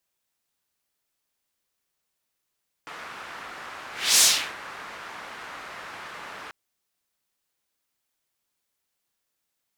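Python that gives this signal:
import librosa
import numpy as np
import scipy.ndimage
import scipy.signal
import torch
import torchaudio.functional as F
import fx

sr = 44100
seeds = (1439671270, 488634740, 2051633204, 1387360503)

y = fx.whoosh(sr, seeds[0], length_s=3.64, peak_s=1.33, rise_s=0.3, fall_s=0.38, ends_hz=1400.0, peak_hz=6800.0, q=1.3, swell_db=24)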